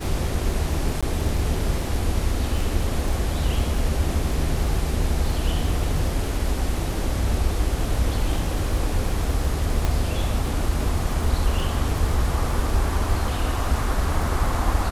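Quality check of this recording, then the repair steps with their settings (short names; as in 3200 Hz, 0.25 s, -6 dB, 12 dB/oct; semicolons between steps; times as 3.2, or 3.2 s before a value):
crackle 33/s -28 dBFS
1.01–1.03 gap 16 ms
9.85 pop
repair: de-click; interpolate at 1.01, 16 ms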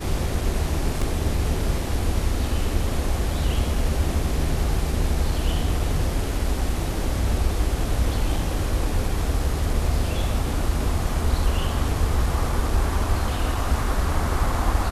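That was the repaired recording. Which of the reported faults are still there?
9.85 pop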